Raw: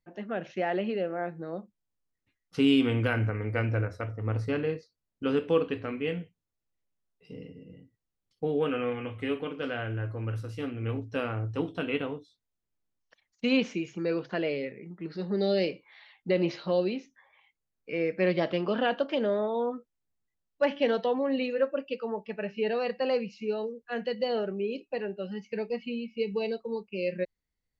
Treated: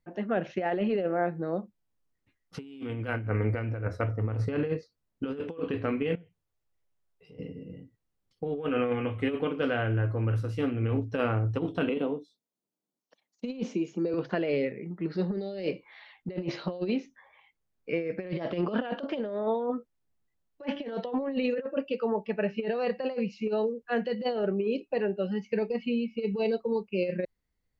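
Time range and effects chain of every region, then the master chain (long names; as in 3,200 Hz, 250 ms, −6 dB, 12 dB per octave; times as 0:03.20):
0:06.15–0:07.39: parametric band 230 Hz −9.5 dB 0.74 octaves + downward compressor 2.5 to 1, threshold −59 dBFS
0:11.89–0:14.14: high-pass filter 180 Hz 24 dB per octave + parametric band 1,800 Hz −11.5 dB 1.5 octaves
whole clip: high-shelf EQ 2,300 Hz −7 dB; compressor whose output falls as the input rises −31 dBFS, ratio −0.5; level +3 dB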